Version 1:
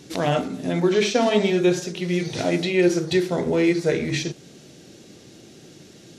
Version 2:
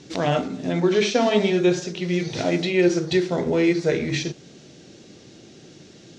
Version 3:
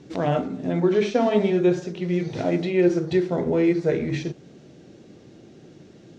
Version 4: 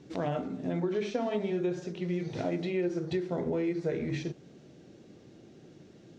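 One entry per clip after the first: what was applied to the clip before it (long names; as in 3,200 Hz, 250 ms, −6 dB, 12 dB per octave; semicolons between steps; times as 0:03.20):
low-pass filter 7,100 Hz 24 dB per octave
parametric band 5,600 Hz −12 dB 2.7 octaves
downward compressor, threshold −21 dBFS, peak gain reduction 7.5 dB; level −6 dB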